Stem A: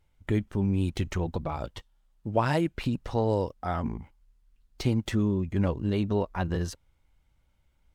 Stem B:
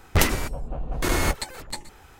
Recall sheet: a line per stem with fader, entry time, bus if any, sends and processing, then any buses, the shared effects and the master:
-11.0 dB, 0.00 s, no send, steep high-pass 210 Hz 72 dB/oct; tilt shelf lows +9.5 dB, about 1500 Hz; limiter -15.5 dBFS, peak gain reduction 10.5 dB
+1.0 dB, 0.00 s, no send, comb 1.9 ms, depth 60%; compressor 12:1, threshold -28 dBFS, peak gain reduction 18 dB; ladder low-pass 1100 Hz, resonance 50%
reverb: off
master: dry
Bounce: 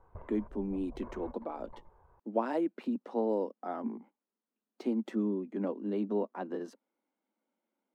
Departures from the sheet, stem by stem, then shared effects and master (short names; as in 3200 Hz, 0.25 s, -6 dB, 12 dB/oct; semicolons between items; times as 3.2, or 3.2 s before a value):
stem A: missing limiter -15.5 dBFS, peak gain reduction 10.5 dB; stem B +1.0 dB -> -6.5 dB